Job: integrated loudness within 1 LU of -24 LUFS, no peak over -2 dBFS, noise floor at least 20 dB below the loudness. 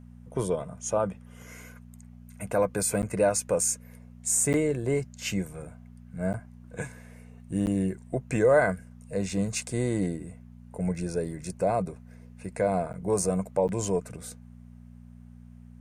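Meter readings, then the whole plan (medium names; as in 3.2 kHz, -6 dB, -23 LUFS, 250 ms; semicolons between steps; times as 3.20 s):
dropouts 6; longest dropout 9.5 ms; hum 60 Hz; highest harmonic 240 Hz; hum level -47 dBFS; loudness -28.5 LUFS; peak level -10.5 dBFS; loudness target -24.0 LUFS
-> interpolate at 3.02/4.53/6.33/7.66/12.93/13.68 s, 9.5 ms; de-hum 60 Hz, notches 4; trim +4.5 dB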